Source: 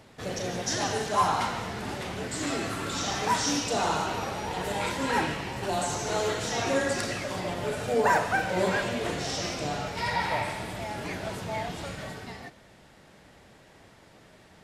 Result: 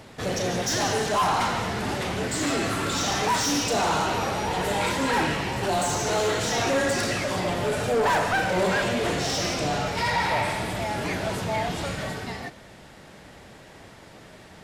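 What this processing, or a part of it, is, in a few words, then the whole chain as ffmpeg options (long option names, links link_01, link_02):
saturation between pre-emphasis and de-emphasis: -af "highshelf=frequency=5000:gain=6,asoftclip=type=tanh:threshold=-26dB,highshelf=frequency=5000:gain=-6,volume=7.5dB"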